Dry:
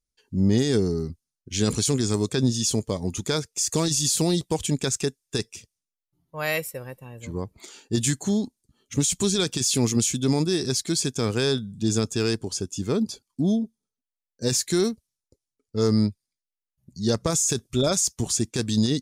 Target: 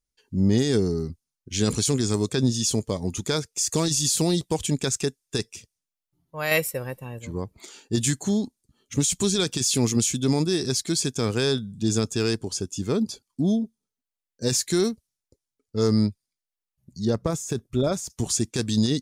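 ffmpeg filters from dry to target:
-filter_complex "[0:a]asettb=1/sr,asplit=3[a][b][c];[a]atrim=end=6.514[d];[b]atrim=start=6.51:end=7.19,asetpts=PTS-STARTPTS,afade=t=in:d=0.004:c=qsin,afade=t=out:st=0.676:d=0.004:c=qsin,acontrast=28[e];[c]atrim=start=7.186[f];[d][e]acrossfade=d=0.004:c1=hsin:c2=qsin[g];[g][f]acrossfade=d=0.004:c1=qsin:c2=hsin,asettb=1/sr,asplit=3[h][i][j];[h]atrim=end=17.054[k];[i]atrim=start=17.05:end=18.1,asetpts=PTS-STARTPTS,afade=t=in:d=0.004:c=qsin,afade=t=out:st=1.046:d=0.004:c=qsin,equalizer=f=6.8k:w=0.34:g=-12[l];[j]atrim=start=18.096[m];[k][l]acrossfade=d=0.004:c1=hsin:c2=qsin[n];[n][m]acrossfade=d=0.004:c1=qsin:c2=hsin"

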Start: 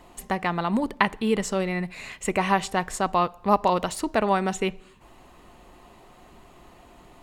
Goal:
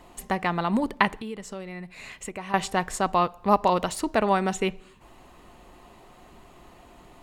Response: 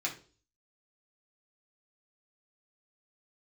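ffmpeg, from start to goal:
-filter_complex "[0:a]asettb=1/sr,asplit=3[a][b][c];[a]atrim=end=1.164[d];[b]atrim=start=1.16:end=2.54,asetpts=PTS-STARTPTS,afade=t=in:d=0.004:c=qsin,afade=t=out:st=1.376:d=0.004:c=qsin,acompressor=threshold=-39dB:ratio=2.5[e];[c]atrim=start=2.536[f];[d][e]acrossfade=d=0.004:c1=hsin:c2=qsin[g];[g][f]acrossfade=d=0.004:c1=qsin:c2=hsin"

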